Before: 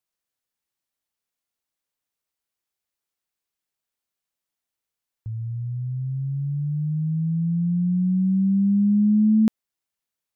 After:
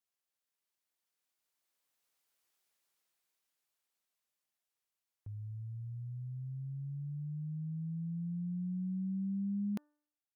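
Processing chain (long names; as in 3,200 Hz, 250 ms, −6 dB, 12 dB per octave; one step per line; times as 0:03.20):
source passing by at 0:02.47, 24 m/s, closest 19 metres
low-shelf EQ 210 Hz −10 dB
hum removal 296.6 Hz, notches 6
level +5.5 dB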